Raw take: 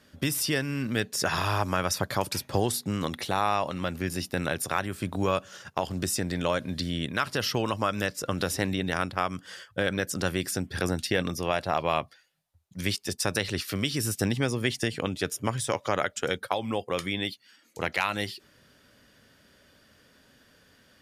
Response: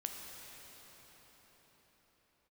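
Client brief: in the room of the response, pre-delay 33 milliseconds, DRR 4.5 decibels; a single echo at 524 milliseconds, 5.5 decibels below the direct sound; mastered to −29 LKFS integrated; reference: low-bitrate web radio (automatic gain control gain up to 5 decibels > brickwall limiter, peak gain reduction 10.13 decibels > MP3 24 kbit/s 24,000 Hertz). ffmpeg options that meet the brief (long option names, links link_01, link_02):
-filter_complex "[0:a]aecho=1:1:524:0.531,asplit=2[link_01][link_02];[1:a]atrim=start_sample=2205,adelay=33[link_03];[link_02][link_03]afir=irnorm=-1:irlink=0,volume=-4.5dB[link_04];[link_01][link_04]amix=inputs=2:normalize=0,dynaudnorm=maxgain=5dB,alimiter=limit=-15.5dB:level=0:latency=1,volume=-1dB" -ar 24000 -c:a libmp3lame -b:a 24k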